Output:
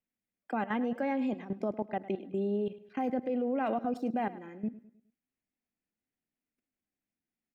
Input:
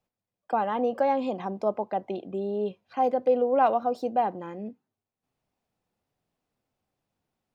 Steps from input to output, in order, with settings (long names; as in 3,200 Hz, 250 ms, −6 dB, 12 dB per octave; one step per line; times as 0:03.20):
octave-band graphic EQ 125/250/500/1,000/2,000/4,000 Hz −9/+9/−5/−9/+9/−7 dB
output level in coarse steps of 16 dB
repeating echo 104 ms, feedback 43%, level −17 dB
level +1.5 dB